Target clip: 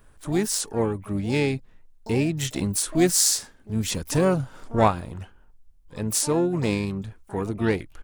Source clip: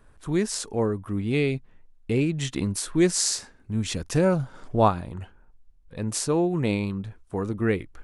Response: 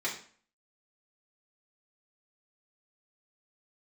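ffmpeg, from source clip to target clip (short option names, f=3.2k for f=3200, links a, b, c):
-filter_complex "[0:a]asplit=3[a][b][c];[b]asetrate=33038,aresample=44100,atempo=1.33484,volume=-16dB[d];[c]asetrate=88200,aresample=44100,atempo=0.5,volume=-14dB[e];[a][d][e]amix=inputs=3:normalize=0,crystalizer=i=1:c=0"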